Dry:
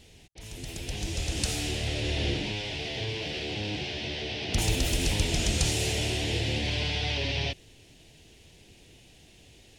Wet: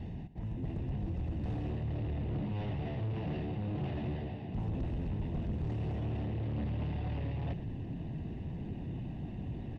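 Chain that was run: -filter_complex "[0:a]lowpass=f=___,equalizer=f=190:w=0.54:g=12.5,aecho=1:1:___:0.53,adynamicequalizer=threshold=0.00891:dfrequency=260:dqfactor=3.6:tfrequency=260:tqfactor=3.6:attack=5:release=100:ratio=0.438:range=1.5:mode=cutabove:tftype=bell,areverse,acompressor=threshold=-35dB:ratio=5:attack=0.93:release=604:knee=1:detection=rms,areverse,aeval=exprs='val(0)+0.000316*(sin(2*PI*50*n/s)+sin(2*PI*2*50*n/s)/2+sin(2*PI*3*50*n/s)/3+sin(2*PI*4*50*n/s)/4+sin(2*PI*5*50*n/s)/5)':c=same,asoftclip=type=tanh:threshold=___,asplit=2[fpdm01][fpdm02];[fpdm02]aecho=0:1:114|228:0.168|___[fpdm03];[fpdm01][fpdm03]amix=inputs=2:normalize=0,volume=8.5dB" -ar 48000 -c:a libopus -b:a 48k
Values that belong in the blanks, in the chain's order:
1300, 1.1, -39dB, 0.0386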